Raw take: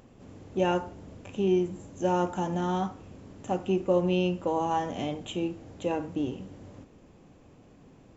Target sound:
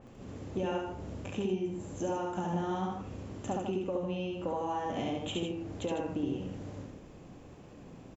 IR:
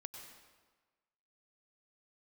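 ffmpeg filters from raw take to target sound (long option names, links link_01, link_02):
-af "acompressor=threshold=-33dB:ratio=12,aecho=1:1:69.97|151.6:0.794|0.447,adynamicequalizer=threshold=0.00178:dfrequency=3500:dqfactor=0.7:tfrequency=3500:tqfactor=0.7:attack=5:release=100:ratio=0.375:range=2:mode=cutabove:tftype=highshelf,volume=1.5dB"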